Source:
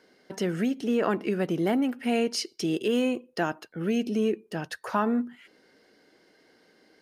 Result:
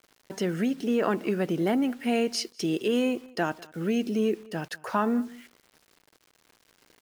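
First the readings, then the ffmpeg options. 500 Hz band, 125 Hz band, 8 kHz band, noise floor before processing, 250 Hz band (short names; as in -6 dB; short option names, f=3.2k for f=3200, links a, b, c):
0.0 dB, 0.0 dB, 0.0 dB, -62 dBFS, 0.0 dB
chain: -filter_complex "[0:a]acrusher=bits=8:mix=0:aa=0.000001,asplit=2[a][b];[b]adelay=198.3,volume=-23dB,highshelf=f=4k:g=-4.46[c];[a][c]amix=inputs=2:normalize=0"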